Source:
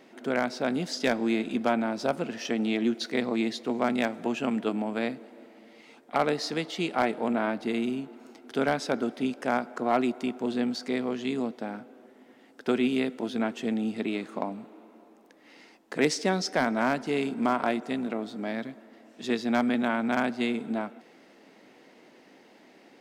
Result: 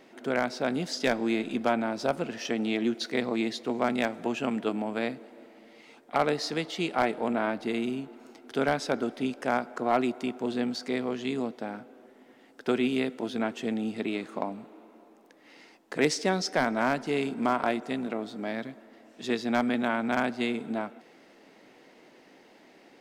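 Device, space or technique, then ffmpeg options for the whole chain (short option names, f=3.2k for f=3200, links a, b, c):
low shelf boost with a cut just above: -af "lowshelf=f=77:g=6.5,equalizer=f=220:t=o:w=0.77:g=-3"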